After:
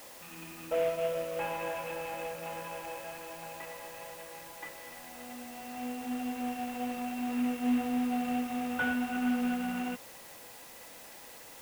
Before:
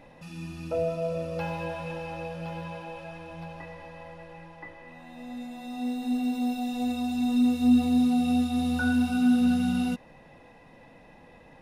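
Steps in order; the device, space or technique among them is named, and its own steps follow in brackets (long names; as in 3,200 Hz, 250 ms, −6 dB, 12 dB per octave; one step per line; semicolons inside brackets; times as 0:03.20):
army field radio (band-pass filter 380–3,100 Hz; variable-slope delta modulation 16 kbit/s; white noise bed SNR 16 dB)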